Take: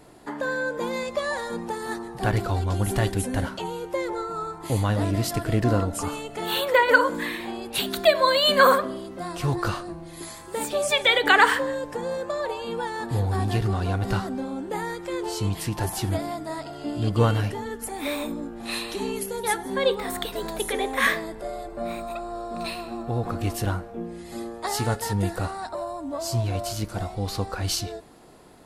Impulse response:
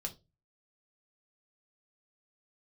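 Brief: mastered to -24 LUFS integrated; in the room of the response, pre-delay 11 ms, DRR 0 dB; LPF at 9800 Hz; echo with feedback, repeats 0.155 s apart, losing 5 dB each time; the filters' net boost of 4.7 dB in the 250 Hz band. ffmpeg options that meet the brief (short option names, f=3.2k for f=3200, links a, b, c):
-filter_complex "[0:a]lowpass=9.8k,equalizer=f=250:t=o:g=6,aecho=1:1:155|310|465|620|775|930|1085:0.562|0.315|0.176|0.0988|0.0553|0.031|0.0173,asplit=2[a][b];[1:a]atrim=start_sample=2205,adelay=11[c];[b][c]afir=irnorm=-1:irlink=0,volume=1dB[d];[a][d]amix=inputs=2:normalize=0,volume=-4.5dB"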